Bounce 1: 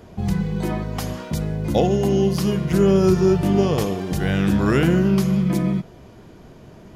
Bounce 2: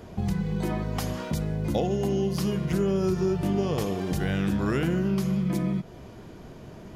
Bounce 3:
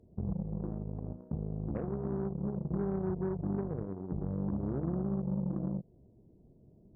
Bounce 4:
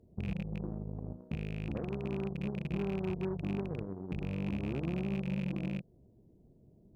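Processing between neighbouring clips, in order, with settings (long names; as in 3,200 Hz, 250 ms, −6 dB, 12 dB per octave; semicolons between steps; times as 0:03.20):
downward compressor 2.5 to 1, threshold −26 dBFS, peak gain reduction 10 dB
Gaussian smoothing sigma 16 samples; harmonic generator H 7 −21 dB, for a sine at −16 dBFS; level −6.5 dB
loose part that buzzes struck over −33 dBFS, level −34 dBFS; level −1.5 dB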